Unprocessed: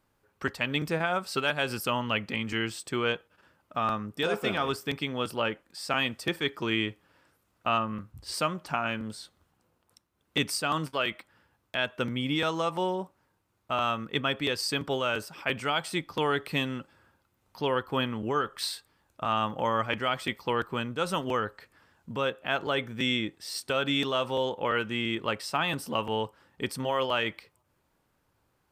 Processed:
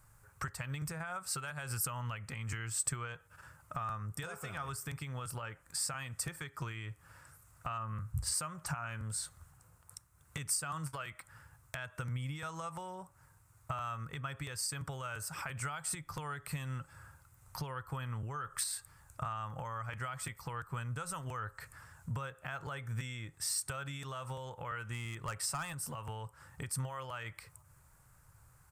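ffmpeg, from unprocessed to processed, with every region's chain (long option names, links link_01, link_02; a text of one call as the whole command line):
ffmpeg -i in.wav -filter_complex "[0:a]asettb=1/sr,asplit=3[link_01][link_02][link_03];[link_01]atrim=end=24.924[link_04];[link_02]atrim=start=24.92:end=25.73,asetpts=PTS-STARTPTS,afade=type=in:duration=0.004:curve=qsin,afade=type=out:start_time=0.806:duration=0.004:curve=qsin,acontrast=71,asoftclip=type=hard:threshold=-16dB[link_05];[link_03]atrim=start=25.726[link_06];[link_04][link_05]acrossfade=duration=0.004:curve1=hsin:curve2=qsin[link_07];[link_07][link_06]acrossfade=duration=0.004:curve1=qsin:curve2=hsin,alimiter=level_in=1dB:limit=-24dB:level=0:latency=1:release=263,volume=-1dB,acompressor=threshold=-43dB:ratio=6,firequalizer=gain_entry='entry(140,0);entry(200,-18);entry(350,-20);entry(510,-15);entry(1300,-5);entry(3200,-17);entry(7900,3);entry(13000,-3)':delay=0.05:min_phase=1,volume=14dB" out.wav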